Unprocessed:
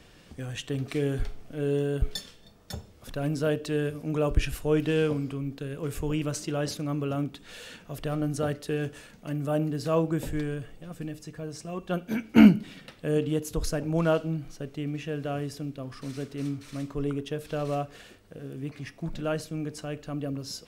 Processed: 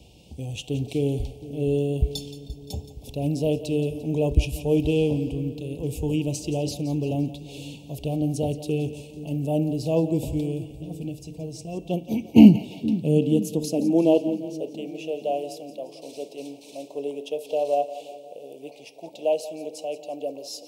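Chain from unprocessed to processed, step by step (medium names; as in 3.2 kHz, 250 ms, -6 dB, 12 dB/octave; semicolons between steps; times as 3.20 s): Chebyshev band-stop 850–2600 Hz, order 3; dynamic bell 340 Hz, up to +3 dB, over -37 dBFS, Q 1.6; high-pass sweep 61 Hz -> 570 Hz, 11.77–14.87 s; two-band feedback delay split 430 Hz, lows 473 ms, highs 173 ms, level -14 dB; trim +2 dB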